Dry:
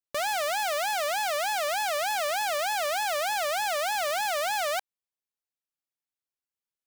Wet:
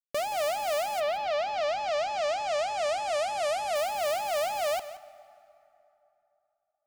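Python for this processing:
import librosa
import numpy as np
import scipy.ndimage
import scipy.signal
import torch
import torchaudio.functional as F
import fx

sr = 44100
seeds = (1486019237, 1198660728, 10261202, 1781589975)

y = scipy.ndimage.median_filter(x, 41, mode='constant')
y = fx.lowpass(y, sr, hz=fx.line((0.99, 4200.0), (3.74, 11000.0)), slope=24, at=(0.99, 3.74), fade=0.02)
y = y + 10.0 ** (-15.0 / 20.0) * np.pad(y, (int(174 * sr / 1000.0), 0))[:len(y)]
y = fx.rev_plate(y, sr, seeds[0], rt60_s=3.2, hf_ratio=0.6, predelay_ms=0, drr_db=17.0)
y = y * librosa.db_to_amplitude(4.5)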